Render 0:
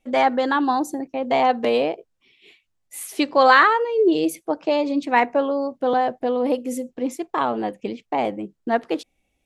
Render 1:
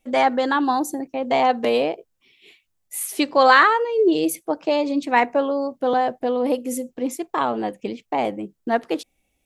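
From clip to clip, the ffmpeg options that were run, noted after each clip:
-af "highshelf=f=8.9k:g=10.5"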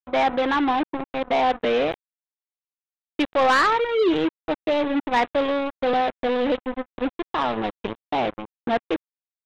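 -af "aresample=8000,acrusher=bits=3:mix=0:aa=0.5,aresample=44100,asoftclip=type=tanh:threshold=-13.5dB"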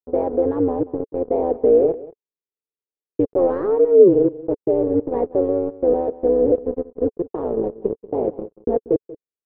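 -af "tremolo=f=180:d=0.824,lowpass=f=440:t=q:w=4.9,aecho=1:1:186:0.126,volume=2dB"

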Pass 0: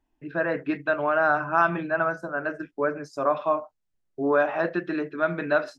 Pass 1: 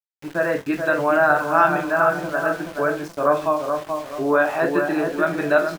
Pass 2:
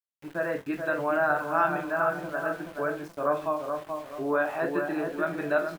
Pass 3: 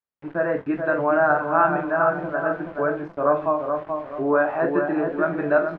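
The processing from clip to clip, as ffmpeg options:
-filter_complex "[0:a]asplit=2[a][b];[b]adelay=429,lowpass=f=1.5k:p=1,volume=-4.5dB,asplit=2[c][d];[d]adelay=429,lowpass=f=1.5k:p=1,volume=0.41,asplit=2[e][f];[f]adelay=429,lowpass=f=1.5k:p=1,volume=0.41,asplit=2[g][h];[h]adelay=429,lowpass=f=1.5k:p=1,volume=0.41,asplit=2[i][j];[j]adelay=429,lowpass=f=1.5k:p=1,volume=0.41[k];[c][e][g][i][k]amix=inputs=5:normalize=0[l];[a][l]amix=inputs=2:normalize=0,aeval=exprs='val(0)*gte(abs(val(0)),0.0119)':c=same,asplit=2[m][n];[n]aecho=0:1:20|45:0.355|0.211[o];[m][o]amix=inputs=2:normalize=0,volume=3.5dB"
-af "equalizer=f=5.7k:w=0.96:g=-4.5,volume=-8dB"
-af "lowpass=1.6k,volume=7dB"

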